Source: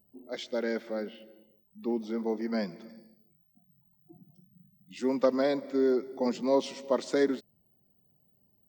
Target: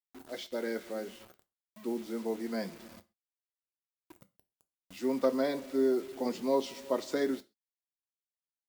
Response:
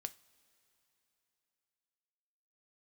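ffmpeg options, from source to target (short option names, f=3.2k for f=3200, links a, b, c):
-filter_complex "[0:a]acrusher=bits=7:mix=0:aa=0.000001[a];[1:a]atrim=start_sample=2205,atrim=end_sample=6174[b];[a][b]afir=irnorm=-1:irlink=0"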